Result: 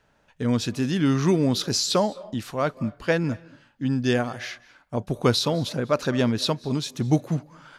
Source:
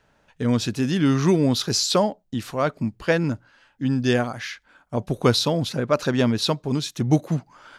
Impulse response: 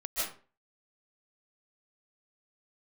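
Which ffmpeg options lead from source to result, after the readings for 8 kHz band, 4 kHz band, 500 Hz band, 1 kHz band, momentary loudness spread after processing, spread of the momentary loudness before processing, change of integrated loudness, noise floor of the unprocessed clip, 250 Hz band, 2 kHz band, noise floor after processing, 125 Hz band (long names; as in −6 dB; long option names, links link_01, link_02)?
−2.0 dB, −2.0 dB, −2.0 dB, −2.0 dB, 10 LU, 10 LU, −2.0 dB, −63 dBFS, −2.0 dB, −2.0 dB, −64 dBFS, −2.0 dB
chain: -filter_complex "[0:a]asplit=2[link_01][link_02];[1:a]atrim=start_sample=2205,asetrate=40131,aresample=44100,adelay=37[link_03];[link_02][link_03]afir=irnorm=-1:irlink=0,volume=-26.5dB[link_04];[link_01][link_04]amix=inputs=2:normalize=0,volume=-2dB"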